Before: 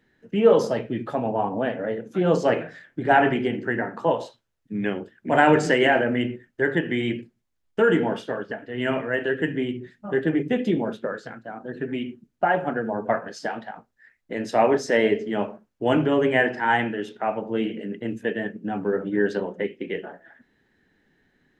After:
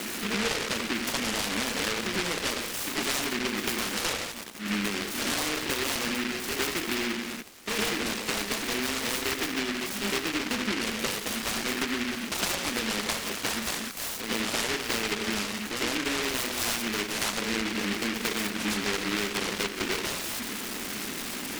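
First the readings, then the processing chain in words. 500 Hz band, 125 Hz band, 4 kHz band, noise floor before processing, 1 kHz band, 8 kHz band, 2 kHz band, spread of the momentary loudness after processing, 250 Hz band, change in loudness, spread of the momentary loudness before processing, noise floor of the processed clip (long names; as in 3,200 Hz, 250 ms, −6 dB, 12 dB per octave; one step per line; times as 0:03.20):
−12.0 dB, −9.5 dB, +9.0 dB, −73 dBFS, −9.0 dB, can't be measured, −2.5 dB, 4 LU, −6.5 dB, −5.0 dB, 14 LU, −36 dBFS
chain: converter with a step at zero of −29.5 dBFS
in parallel at 0 dB: brickwall limiter −16.5 dBFS, peak gain reduction 11.5 dB
on the sum: bit-depth reduction 6 bits, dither triangular
on a send: backwards echo 111 ms −10.5 dB
on the sum: downward compressor 10 to 1, threshold −22 dBFS, peak gain reduction 14 dB
Chebyshev band-pass filter 200–2,000 Hz, order 4
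short delay modulated by noise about 2,000 Hz, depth 0.43 ms
level −3.5 dB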